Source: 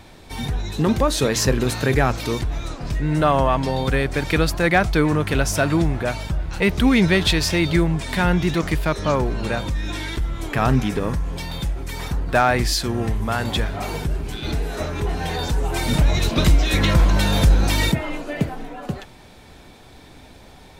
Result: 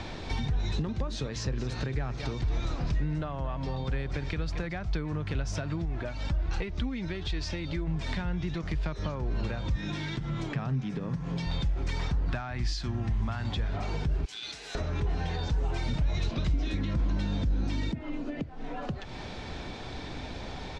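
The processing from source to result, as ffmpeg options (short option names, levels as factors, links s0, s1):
-filter_complex "[0:a]asplit=3[s0][s1][s2];[s0]afade=t=out:st=0.61:d=0.02[s3];[s1]aecho=1:1:226:0.2,afade=t=in:st=0.61:d=0.02,afade=t=out:st=4.77:d=0.02[s4];[s2]afade=t=in:st=4.77:d=0.02[s5];[s3][s4][s5]amix=inputs=3:normalize=0,asettb=1/sr,asplit=3[s6][s7][s8];[s6]atrim=end=5.854[s9];[s7]atrim=start=5.85:end=7.87,asetpts=PTS-STARTPTS,afade=t=in:d=0.004:c=qsin,afade=t=out:st=2.016:d=0.004:c=qsin,flanger=delay=2.4:depth=1.5:regen=36:speed=1.4:shape=triangular[s10];[s8]atrim=start=7.866[s11];[s9][s10]acrossfade=d=0.004:c1=hsin:c2=qsin[s12];[s12][s11]acrossfade=d=0.004:c1=qsin:c2=hsin,asettb=1/sr,asplit=3[s13][s14][s15];[s13]atrim=end=9.754[s16];[s14]atrim=start=9.75:end=11.46,asetpts=PTS-STARTPTS,afade=t=in:d=0.004:c=qsin,afade=t=out:st=1.706:d=0.004:c=qsin,lowshelf=f=100:t=q:w=3:g=-13[s17];[s15]atrim=start=11.456[s18];[s16][s17]acrossfade=d=0.004:c1=hsin:c2=qsin[s19];[s19][s18]acrossfade=d=0.004:c1=qsin:c2=hsin,asettb=1/sr,asplit=3[s20][s21][s22];[s20]atrim=end=12.274[s23];[s21]atrim=start=12.27:end=13.53,asetpts=PTS-STARTPTS,afade=t=in:d=0.004:c=qsin,afade=t=out:st=1.256:d=0.004:c=qsin,equalizer=f=470:t=o:w=0.5:g=-12[s24];[s22]atrim=start=13.526[s25];[s23][s24]acrossfade=d=0.004:c1=hsin:c2=qsin[s26];[s26][s25]acrossfade=d=0.004:c1=qsin:c2=hsin,asettb=1/sr,asplit=3[s27][s28][s29];[s27]atrim=end=14.254[s30];[s28]atrim=start=14.25:end=14.75,asetpts=PTS-STARTPTS,afade=t=in:d=0.004:c=qsin,afade=t=out:st=0.496:d=0.004:c=qsin,aderivative[s31];[s29]atrim=start=14.746[s32];[s30][s31]acrossfade=d=0.004:c1=hsin:c2=qsin[s33];[s33][s32]acrossfade=d=0.004:c1=qsin:c2=hsin,asettb=1/sr,asplit=3[s34][s35][s36];[s34]atrim=end=16.534[s37];[s35]atrim=start=16.53:end=18.44,asetpts=PTS-STARTPTS,afade=t=in:d=0.004:c=qsin,afade=t=out:st=1.906:d=0.004:c=qsin,equalizer=f=260:w=1.8:g=12.5[s38];[s36]atrim=start=18.436[s39];[s37][s38]acrossfade=d=0.004:c1=hsin:c2=qsin[s40];[s40][s39]acrossfade=d=0.004:c1=qsin:c2=hsin,acompressor=threshold=0.0251:ratio=6,lowpass=f=6100:w=0.5412,lowpass=f=6100:w=1.3066,acrossover=split=150[s41][s42];[s42]acompressor=threshold=0.00562:ratio=3[s43];[s41][s43]amix=inputs=2:normalize=0,volume=2.24"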